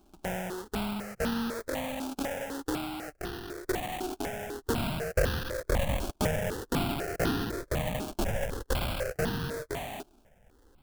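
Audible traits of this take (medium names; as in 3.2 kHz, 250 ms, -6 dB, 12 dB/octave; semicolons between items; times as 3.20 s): aliases and images of a low sample rate 1.1 kHz, jitter 20%; notches that jump at a steady rate 4 Hz 510–2200 Hz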